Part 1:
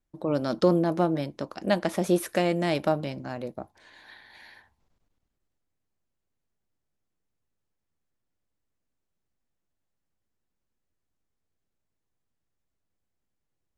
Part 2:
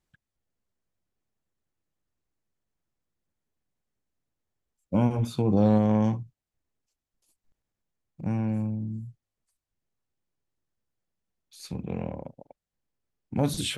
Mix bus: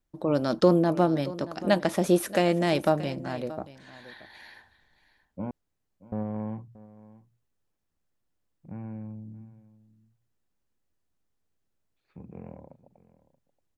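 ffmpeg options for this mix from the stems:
-filter_complex "[0:a]bandreject=f=2.2k:w=29,volume=1.5dB,asplit=2[a][b];[b]volume=-17dB[c];[1:a]lowpass=f=2.1k:w=0.5412,lowpass=f=2.1k:w=1.3066,bandreject=f=60:t=h:w=6,bandreject=f=120:t=h:w=6,adelay=450,volume=-10.5dB,asplit=3[d][e][f];[d]atrim=end=5.51,asetpts=PTS-STARTPTS,afade=t=out:st=5.506:d=0.004:c=hsin[g];[e]atrim=start=5.51:end=6.12,asetpts=PTS-STARTPTS,volume=0[h];[f]atrim=start=6.12,asetpts=PTS-STARTPTS,afade=t=in:d=0.004:c=hsin[i];[g][h][i]concat=n=3:v=0:a=1,asplit=2[j][k];[k]volume=-18.5dB[l];[c][l]amix=inputs=2:normalize=0,aecho=0:1:629:1[m];[a][j][m]amix=inputs=3:normalize=0"

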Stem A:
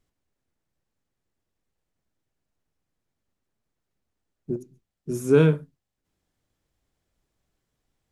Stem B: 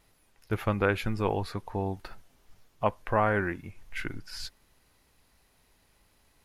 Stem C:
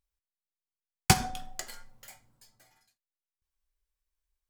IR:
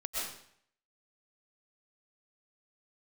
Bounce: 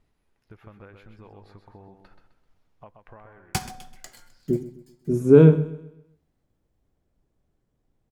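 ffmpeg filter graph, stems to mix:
-filter_complex "[0:a]tiltshelf=f=1.1k:g=8,bandreject=f=50:t=h:w=6,bandreject=f=100:t=h:w=6,bandreject=f=150:t=h:w=6,volume=-1dB,asplit=2[a][b];[b]volume=-16dB[c];[1:a]aemphasis=mode=reproduction:type=50kf,acompressor=threshold=-35dB:ratio=8,volume=-9.5dB,afade=t=out:st=3.14:d=0.42:silence=0.281838,asplit=2[d][e];[e]volume=-7dB[f];[2:a]adelay=2450,volume=-6dB,asplit=2[g][h];[h]volume=-15dB[i];[c][f][i]amix=inputs=3:normalize=0,aecho=0:1:129|258|387|516|645:1|0.38|0.144|0.0549|0.0209[j];[a][d][g][j]amix=inputs=4:normalize=0"

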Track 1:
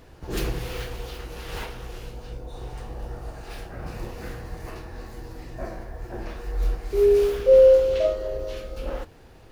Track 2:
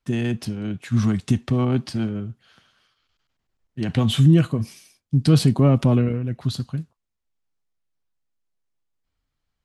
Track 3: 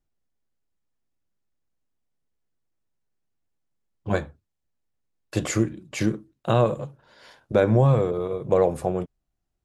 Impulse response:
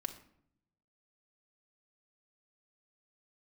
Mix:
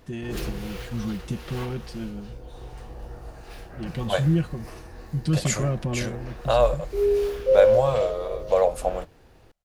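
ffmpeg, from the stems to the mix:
-filter_complex "[0:a]volume=-4dB[a];[1:a]aecho=1:1:5.6:0.65,volume=-10.5dB[b];[2:a]lowshelf=f=440:t=q:w=3:g=-9,adynamicequalizer=threshold=0.0126:dfrequency=2200:dqfactor=0.7:tfrequency=2200:tqfactor=0.7:attack=5:release=100:ratio=0.375:range=3.5:mode=boostabove:tftype=highshelf,volume=-2.5dB[c];[a][b][c]amix=inputs=3:normalize=0"

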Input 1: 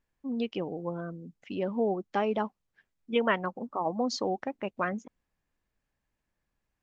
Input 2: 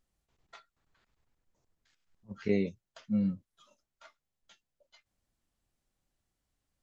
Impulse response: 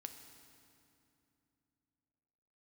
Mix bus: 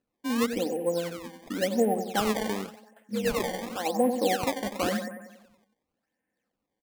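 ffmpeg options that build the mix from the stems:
-filter_complex "[0:a]aecho=1:1:3.9:0.57,acrusher=bits=5:mode=log:mix=0:aa=0.000001,volume=-2dB,asplit=2[a][b];[b]volume=-8.5dB[c];[1:a]volume=-8.5dB,asplit=2[d][e];[e]apad=whole_len=300973[f];[a][f]sidechaincompress=threshold=-46dB:ratio=8:attack=5.9:release=897[g];[c]aecho=0:1:93|186|279|372|465|558|651|744:1|0.55|0.303|0.166|0.0915|0.0503|0.0277|0.0152[h];[g][d][h]amix=inputs=3:normalize=0,highpass=160,equalizer=f=210:t=q:w=4:g=5,equalizer=f=320:t=q:w=4:g=5,equalizer=f=500:t=q:w=4:g=6,equalizer=f=710:t=q:w=4:g=5,equalizer=f=1.2k:t=q:w=4:g=-9,equalizer=f=1.8k:t=q:w=4:g=9,lowpass=f=2.9k:w=0.5412,lowpass=f=2.9k:w=1.3066,acrusher=samples=19:mix=1:aa=0.000001:lfo=1:lforange=30.4:lforate=0.92"

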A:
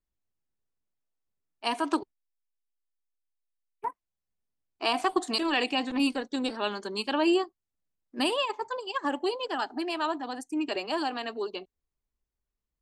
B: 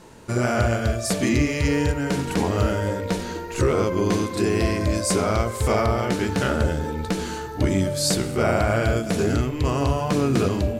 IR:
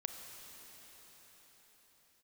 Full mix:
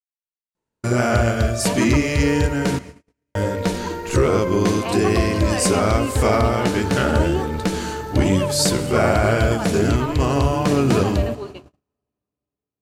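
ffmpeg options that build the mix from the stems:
-filter_complex "[0:a]acrossover=split=2600[a][b];[b]acompressor=threshold=-44dB:ratio=4:attack=1:release=60[c];[a][c]amix=inputs=2:normalize=0,lowpass=4.6k,volume=-2.5dB,asplit=2[d][e];[e]volume=-7.5dB[f];[1:a]adelay=550,volume=1.5dB,asplit=3[g][h][i];[g]atrim=end=2.79,asetpts=PTS-STARTPTS,afade=t=out:st=2.786:d=0.004:c=hsin[j];[h]atrim=start=2.79:end=3.35,asetpts=PTS-STARTPTS,volume=0[k];[i]atrim=start=3.35,asetpts=PTS-STARTPTS,afade=t=in:d=0.004:c=hsin[l];[j][k][l]concat=n=3:v=0:a=1,asplit=2[m][n];[n]volume=-10dB[o];[2:a]atrim=start_sample=2205[p];[f][o]amix=inputs=2:normalize=0[q];[q][p]afir=irnorm=-1:irlink=0[r];[d][m][r]amix=inputs=3:normalize=0,agate=range=-40dB:threshold=-34dB:ratio=16:detection=peak"

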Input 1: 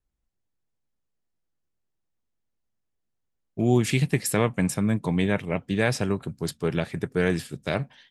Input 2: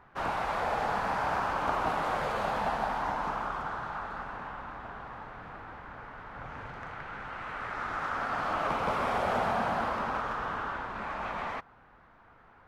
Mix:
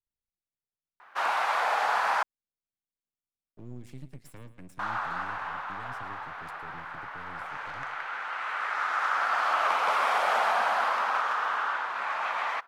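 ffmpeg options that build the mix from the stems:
-filter_complex "[0:a]highpass=f=45:p=1,acrossover=split=130[a][b];[b]acompressor=threshold=-40dB:ratio=3[c];[a][c]amix=inputs=2:normalize=0,aeval=exprs='max(val(0),0)':c=same,volume=-11dB,asplit=2[d][e];[e]volume=-15dB[f];[1:a]highpass=900,acontrast=81,adelay=1000,volume=0.5dB,asplit=3[g][h][i];[g]atrim=end=2.23,asetpts=PTS-STARTPTS,afade=t=out:st=2.226:d=0.004:c=hsin[j];[h]atrim=start=2.23:end=4.79,asetpts=PTS-STARTPTS,volume=0[k];[i]atrim=start=4.79,asetpts=PTS-STARTPTS,afade=t=in:d=0.004:c=hsin[l];[j][k][l]concat=n=3:v=0:a=1[m];[f]aecho=0:1:111|222|333|444|555:1|0.35|0.122|0.0429|0.015[n];[d][m][n]amix=inputs=3:normalize=0"

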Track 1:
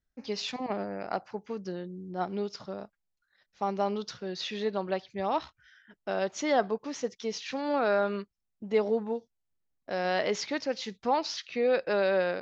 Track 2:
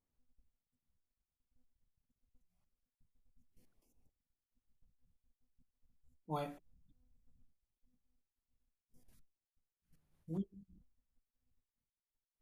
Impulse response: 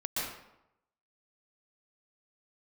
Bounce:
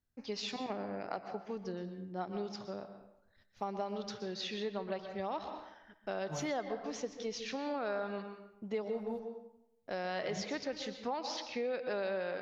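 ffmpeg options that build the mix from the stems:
-filter_complex "[0:a]volume=-5.5dB,asplit=2[a][b];[b]volume=-12.5dB[c];[1:a]equalizer=f=110:t=o:w=1.3:g=12,volume=-5dB[d];[2:a]atrim=start_sample=2205[e];[c][e]afir=irnorm=-1:irlink=0[f];[a][d][f]amix=inputs=3:normalize=0,acompressor=threshold=-34dB:ratio=4"

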